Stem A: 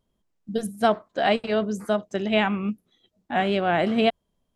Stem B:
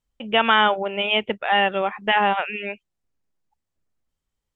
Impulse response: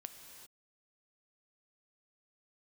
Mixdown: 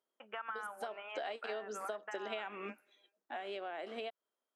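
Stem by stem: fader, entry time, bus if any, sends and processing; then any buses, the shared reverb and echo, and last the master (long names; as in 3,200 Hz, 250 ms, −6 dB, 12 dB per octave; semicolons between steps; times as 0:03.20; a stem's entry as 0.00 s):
0:00.76 −9.5 dB → 0:01.29 0 dB → 0:02.72 0 dB → 0:03.22 −11 dB, 0.00 s, no send, high-pass filter 350 Hz 24 dB per octave; downward compressor, threshold −23 dBFS, peak gain reduction 8 dB
−10.5 dB, 0.00 s, send −15.5 dB, high-pass filter 810 Hz 12 dB per octave; downward compressor, threshold −27 dBFS, peak gain reduction 13.5 dB; low-pass with resonance 1,400 Hz, resonance Q 3.2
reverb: on, pre-delay 3 ms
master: downward compressor 6 to 1, threshold −39 dBFS, peak gain reduction 15.5 dB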